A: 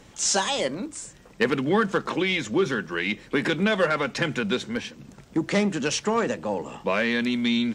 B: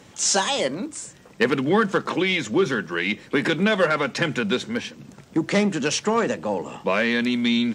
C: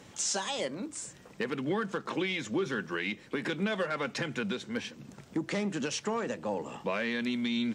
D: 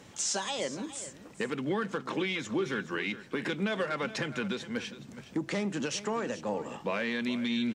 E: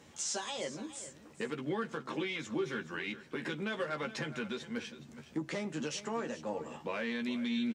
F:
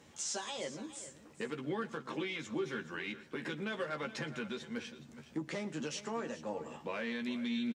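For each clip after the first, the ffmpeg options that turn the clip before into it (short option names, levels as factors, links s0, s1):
-af "highpass=84,volume=1.33"
-af "alimiter=limit=0.126:level=0:latency=1:release=457,volume=0.631"
-af "aecho=1:1:417:0.188"
-filter_complex "[0:a]asplit=2[s0][s1];[s1]adelay=13,volume=0.531[s2];[s0][s2]amix=inputs=2:normalize=0,volume=0.501"
-af "aecho=1:1:117:0.1,volume=0.794"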